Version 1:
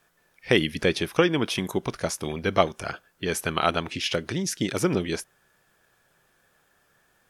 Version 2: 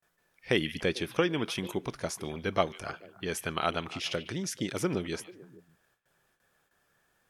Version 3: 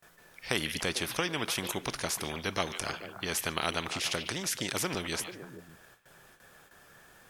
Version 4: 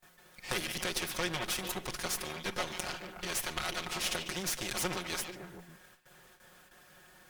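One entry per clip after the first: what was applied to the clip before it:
noise gate with hold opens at −55 dBFS; echo through a band-pass that steps 147 ms, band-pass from 2,600 Hz, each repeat −1.4 octaves, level −12 dB; level −6.5 dB
every bin compressed towards the loudest bin 2 to 1; level −2.5 dB
lower of the sound and its delayed copy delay 5.5 ms

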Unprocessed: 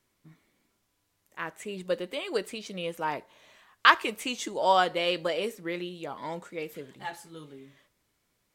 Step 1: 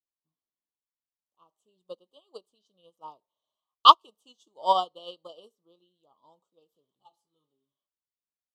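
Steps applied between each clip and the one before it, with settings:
Chebyshev band-stop filter 1,200–3,000 Hz, order 4
parametric band 1,800 Hz +10.5 dB 2.9 octaves
expander for the loud parts 2.5 to 1, over −33 dBFS
level +1 dB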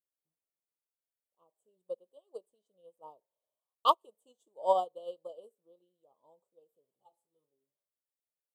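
drawn EQ curve 300 Hz 0 dB, 520 Hz +11 dB, 1,300 Hz −7 dB, 3,600 Hz −9 dB, 5,600 Hz −12 dB, 8,200 Hz +6 dB
level −7.5 dB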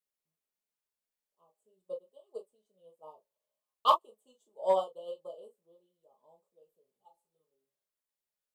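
convolution reverb, pre-delay 5 ms, DRR 0.5 dB
in parallel at −9 dB: hard clipping −19 dBFS, distortion −10 dB
on the sum: level −4 dB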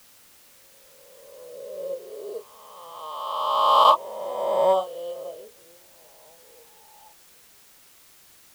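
peak hold with a rise ahead of every peak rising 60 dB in 2.03 s
in parallel at −7 dB: bit-depth reduction 8 bits, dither triangular
on the sum: level +1.5 dB

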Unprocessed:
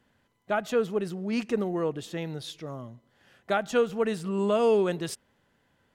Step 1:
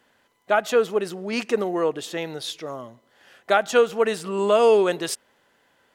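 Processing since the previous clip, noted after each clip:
bass and treble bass −15 dB, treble +1 dB
level +8 dB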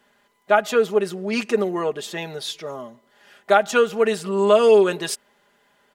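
comb filter 4.9 ms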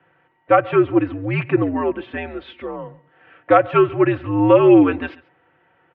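single-tap delay 137 ms −22 dB
single-sideband voice off tune −86 Hz 170–2,700 Hz
level +3 dB

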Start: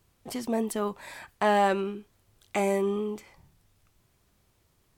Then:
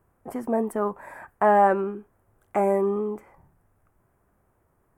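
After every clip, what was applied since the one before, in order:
drawn EQ curve 130 Hz 0 dB, 760 Hz +6 dB, 1,600 Hz +3 dB, 4,000 Hz −25 dB, 10,000 Hz −6 dB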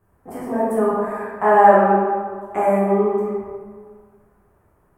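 convolution reverb RT60 1.8 s, pre-delay 9 ms, DRR −9 dB
level −2.5 dB

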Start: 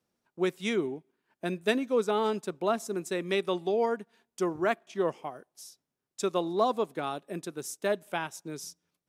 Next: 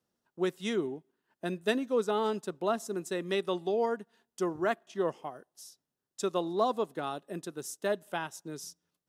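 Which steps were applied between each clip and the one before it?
notch filter 2,300 Hz, Q 6.6
level −2 dB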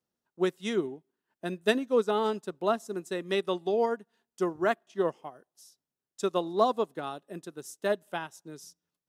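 expander for the loud parts 1.5 to 1, over −43 dBFS
level +4.5 dB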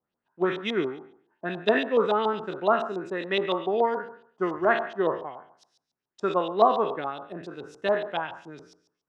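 peak hold with a decay on every bin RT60 0.57 s
auto-filter low-pass saw up 7.1 Hz 740–4,100 Hz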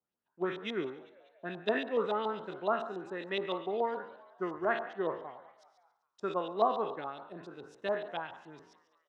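echo with shifted repeats 195 ms, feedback 56%, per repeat +84 Hz, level −21.5 dB
level −8.5 dB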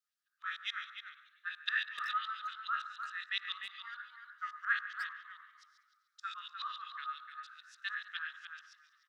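Chebyshev high-pass with heavy ripple 1,200 Hz, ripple 6 dB
far-end echo of a speakerphone 300 ms, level −7 dB
level +6 dB

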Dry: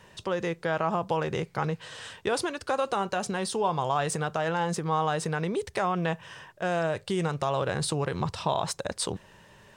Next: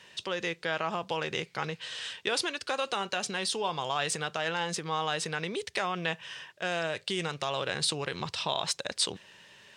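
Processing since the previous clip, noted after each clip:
meter weighting curve D
level −5 dB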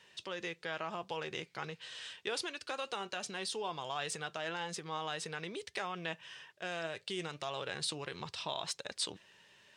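flanger 1.7 Hz, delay 2.1 ms, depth 1.3 ms, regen +79%
level −3.5 dB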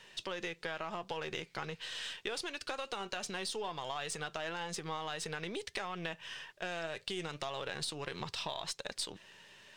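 gain on one half-wave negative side −3 dB
downward compressor, threshold −42 dBFS, peak gain reduction 9.5 dB
level +6.5 dB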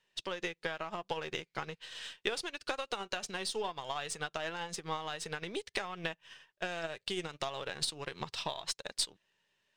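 expander for the loud parts 2.5 to 1, over −53 dBFS
level +7 dB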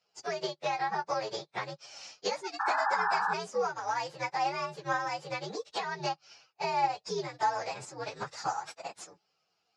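partials spread apart or drawn together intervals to 124%
sound drawn into the spectrogram noise, 0:02.59–0:03.34, 770–1,800 Hz −40 dBFS
loudspeaker in its box 170–5,500 Hz, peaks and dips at 240 Hz −8 dB, 830 Hz +9 dB, 3,000 Hz −7 dB
level +7.5 dB

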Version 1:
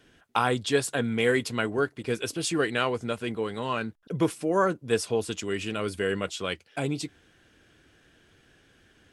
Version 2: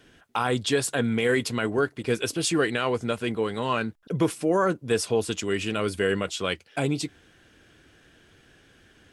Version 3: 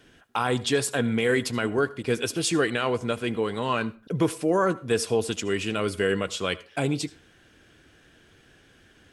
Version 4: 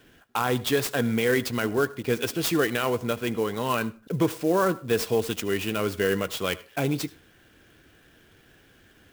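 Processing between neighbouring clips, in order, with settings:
brickwall limiter −16 dBFS, peak gain reduction 6.5 dB; level +3.5 dB
convolution reverb RT60 0.35 s, pre-delay 68 ms, DRR 18.5 dB
converter with an unsteady clock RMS 0.026 ms

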